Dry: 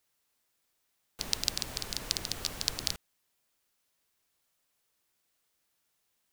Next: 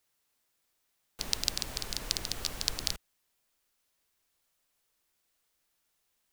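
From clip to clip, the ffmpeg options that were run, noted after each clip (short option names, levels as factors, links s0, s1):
-af "asubboost=boost=2:cutoff=69"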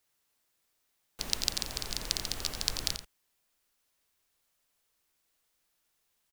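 -af "aecho=1:1:87:0.316"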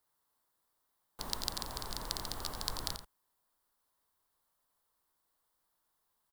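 -af "equalizer=f=1000:t=o:w=0.67:g=9,equalizer=f=2500:t=o:w=0.67:g=-11,equalizer=f=6300:t=o:w=0.67:g=-7,volume=0.75"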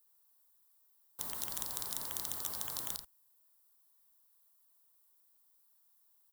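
-af "aemphasis=mode=production:type=75kf,afftfilt=real='re*lt(hypot(re,im),0.0447)':imag='im*lt(hypot(re,im),0.0447)':win_size=1024:overlap=0.75,volume=0.501"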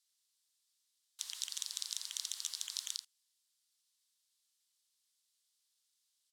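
-af "asuperpass=centerf=4400:order=4:qfactor=0.96,volume=2"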